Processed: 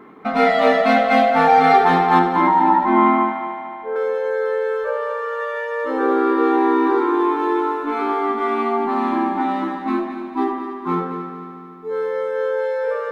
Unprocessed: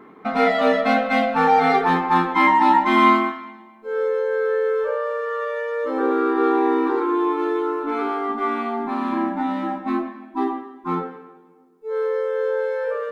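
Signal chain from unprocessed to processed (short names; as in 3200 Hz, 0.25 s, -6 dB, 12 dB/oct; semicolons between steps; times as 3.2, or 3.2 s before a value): 2.19–3.96 LPF 1200 Hz 12 dB/oct; multi-head echo 74 ms, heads first and third, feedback 70%, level -11 dB; gain +2 dB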